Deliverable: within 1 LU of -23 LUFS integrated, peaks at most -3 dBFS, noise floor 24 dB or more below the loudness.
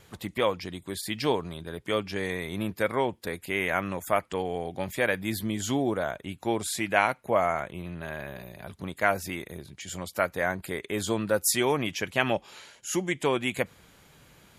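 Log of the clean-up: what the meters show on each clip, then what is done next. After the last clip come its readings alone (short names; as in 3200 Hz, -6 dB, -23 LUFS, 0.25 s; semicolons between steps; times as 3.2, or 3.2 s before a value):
loudness -29.0 LUFS; peak -5.0 dBFS; loudness target -23.0 LUFS
-> gain +6 dB; limiter -3 dBFS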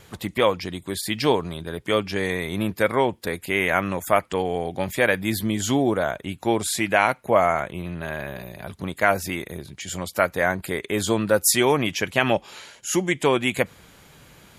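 loudness -23.5 LUFS; peak -3.0 dBFS; noise floor -52 dBFS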